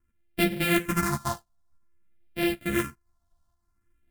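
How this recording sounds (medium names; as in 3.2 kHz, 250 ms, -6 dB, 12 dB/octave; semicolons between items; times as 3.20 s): a buzz of ramps at a fixed pitch in blocks of 128 samples; phasing stages 4, 0.52 Hz, lowest notch 380–1100 Hz; tremolo saw up 1.7 Hz, depth 35%; a shimmering, thickened sound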